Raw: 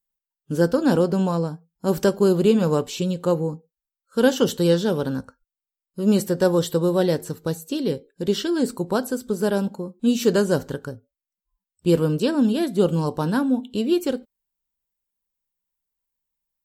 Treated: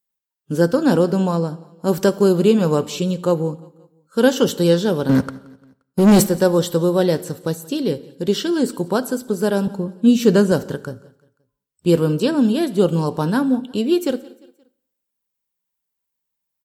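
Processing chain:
high-pass filter 78 Hz 12 dB per octave
0:05.09–0:06.27: leveller curve on the samples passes 3
0:09.67–0:10.52: bass and treble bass +7 dB, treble −3 dB
repeating echo 175 ms, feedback 47%, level −23 dB
convolution reverb RT60 0.80 s, pre-delay 57 ms, DRR 20 dB
level +3 dB

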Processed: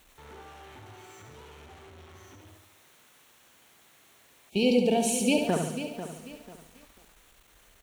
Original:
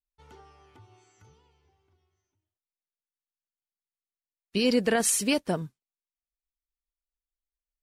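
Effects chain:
converter with a step at zero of −35 dBFS
high-pass filter 100 Hz 6 dB per octave
parametric band 4,900 Hz −10 dB 0.25 octaves
noise gate −33 dBFS, range −8 dB
high-shelf EQ 6,300 Hz −10 dB
on a send: repeating echo 70 ms, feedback 51%, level −6 dB
on the sum: gain on a spectral selection 0:04.50–0:05.47, 940–2,200 Hz −22 dB
feedback echo at a low word length 493 ms, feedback 35%, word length 8 bits, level −11 dB

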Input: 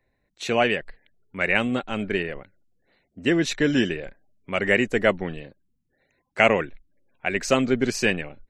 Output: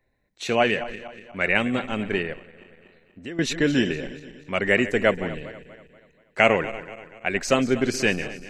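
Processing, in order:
feedback delay that plays each chunk backwards 120 ms, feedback 66%, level −14 dB
0:02.33–0:03.39: downward compressor 2 to 1, threshold −45 dBFS, peak gain reduction 15.5 dB

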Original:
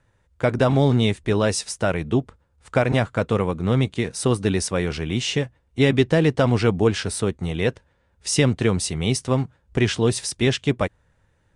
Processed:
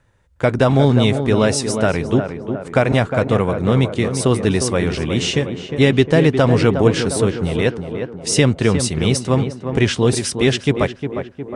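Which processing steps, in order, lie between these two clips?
tape delay 358 ms, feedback 67%, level −6 dB, low-pass 1,400 Hz
level +4 dB

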